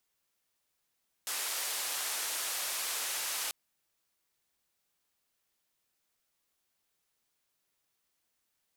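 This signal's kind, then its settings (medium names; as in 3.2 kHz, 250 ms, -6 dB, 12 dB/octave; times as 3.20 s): noise band 600–13000 Hz, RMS -35.5 dBFS 2.24 s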